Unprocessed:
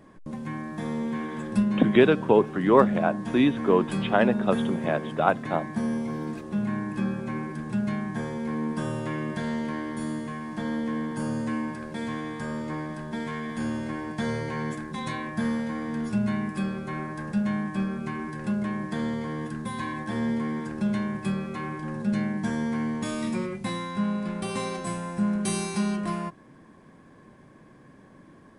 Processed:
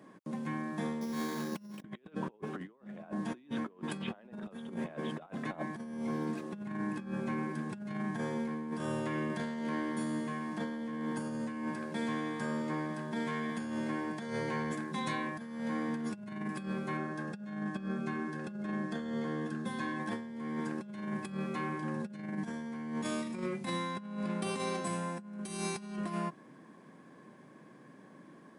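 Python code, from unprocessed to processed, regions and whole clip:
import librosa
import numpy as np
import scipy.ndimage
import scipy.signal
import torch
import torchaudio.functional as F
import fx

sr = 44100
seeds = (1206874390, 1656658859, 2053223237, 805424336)

y = fx.chain(x, sr, fx.resample_bad(factor=8, down='none', up='hold'),
    fx.hum_notches(base_hz=60, count=9), at=(1.01, 1.82))
y = fx.chain(y, sr, fx.lowpass(hz=8700.0, slope=12),
    fx.notch(hz=2300.0, q=12.0),
    fx.notch_comb(f0_hz=980.0), at=(16.97, 20.0))
y = scipy.signal.sosfilt(scipy.signal.butter(4, 150.0, 'highpass', fs=sr, output='sos'), y)
y = fx.over_compress(y, sr, threshold_db=-31.0, ratio=-0.5)
y = y * librosa.db_to_amplitude(-6.0)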